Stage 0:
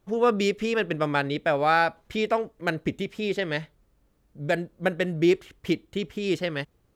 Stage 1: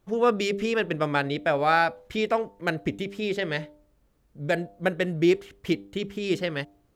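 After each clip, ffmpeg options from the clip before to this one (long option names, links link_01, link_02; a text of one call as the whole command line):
ffmpeg -i in.wav -af "bandreject=frequency=99.56:width_type=h:width=4,bandreject=frequency=199.12:width_type=h:width=4,bandreject=frequency=298.68:width_type=h:width=4,bandreject=frequency=398.24:width_type=h:width=4,bandreject=frequency=497.8:width_type=h:width=4,bandreject=frequency=597.36:width_type=h:width=4,bandreject=frequency=696.92:width_type=h:width=4,bandreject=frequency=796.48:width_type=h:width=4,bandreject=frequency=896.04:width_type=h:width=4" out.wav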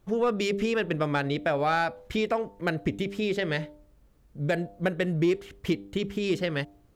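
ffmpeg -i in.wav -af "asoftclip=type=tanh:threshold=-11dB,acompressor=threshold=-28dB:ratio=2,lowshelf=frequency=160:gain=5,volume=2dB" out.wav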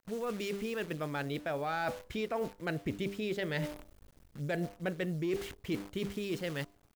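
ffmpeg -i in.wav -af "dynaudnorm=framelen=250:gausssize=11:maxgain=14dB,acrusher=bits=7:dc=4:mix=0:aa=0.000001,areverse,acompressor=threshold=-26dB:ratio=6,areverse,volume=-6.5dB" out.wav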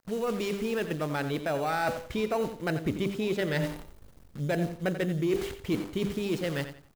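ffmpeg -i in.wav -filter_complex "[0:a]asplit=2[link_01][link_02];[link_02]acrusher=samples=13:mix=1:aa=0.000001,volume=-9.5dB[link_03];[link_01][link_03]amix=inputs=2:normalize=0,aecho=1:1:88|176|264:0.282|0.0761|0.0205,volume=3.5dB" out.wav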